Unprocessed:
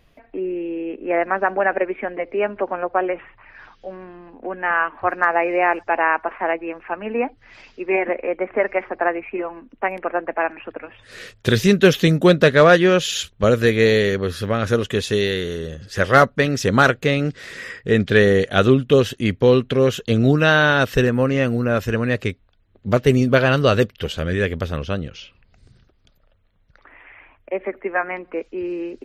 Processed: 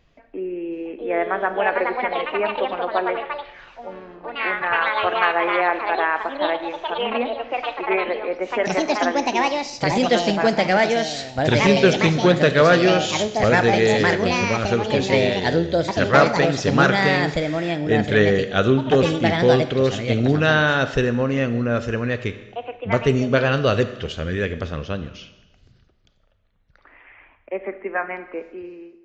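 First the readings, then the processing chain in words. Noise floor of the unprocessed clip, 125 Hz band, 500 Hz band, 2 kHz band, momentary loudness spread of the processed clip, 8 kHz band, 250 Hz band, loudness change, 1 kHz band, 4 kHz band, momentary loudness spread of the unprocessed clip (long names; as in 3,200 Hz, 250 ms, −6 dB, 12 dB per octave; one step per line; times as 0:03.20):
−58 dBFS, −1.5 dB, −1.0 dB, −0.5 dB, 14 LU, −0.5 dB, −1.0 dB, −1.0 dB, +1.0 dB, +1.0 dB, 15 LU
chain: fade-out on the ending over 0.79 s
four-comb reverb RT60 1.1 s, combs from 26 ms, DRR 11 dB
delay with pitch and tempo change per echo 720 ms, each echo +4 semitones, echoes 2
downsampling to 16,000 Hz
level −3 dB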